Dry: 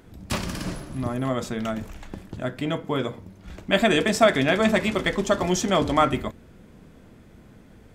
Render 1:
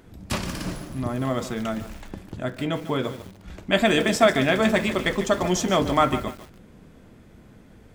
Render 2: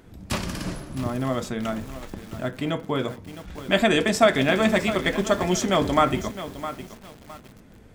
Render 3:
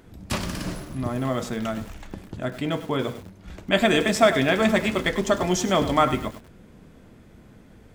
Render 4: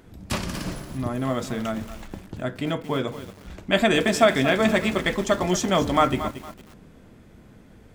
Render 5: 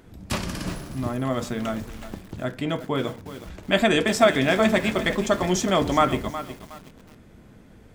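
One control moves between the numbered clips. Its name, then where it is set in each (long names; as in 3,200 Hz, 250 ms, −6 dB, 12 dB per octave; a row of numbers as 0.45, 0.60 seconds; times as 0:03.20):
feedback echo at a low word length, delay time: 147, 661, 100, 229, 366 milliseconds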